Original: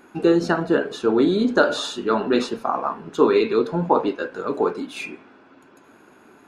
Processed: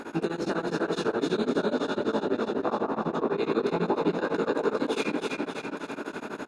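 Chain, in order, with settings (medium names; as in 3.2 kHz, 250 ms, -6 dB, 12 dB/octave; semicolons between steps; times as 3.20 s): spectral levelling over time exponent 0.6; 1.55–3.38 s: low-pass 1.2 kHz 6 dB/octave; in parallel at +3 dB: peak limiter -11 dBFS, peak gain reduction 11 dB; on the sum: compression, threshold -12 dBFS, peak gain reduction 7.5 dB; chorus 0.45 Hz, delay 17.5 ms, depth 7.3 ms; on a send: feedback delay 291 ms, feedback 57%, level -3 dB; on the sum: tremolo of two beating tones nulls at 12 Hz; trim -7.5 dB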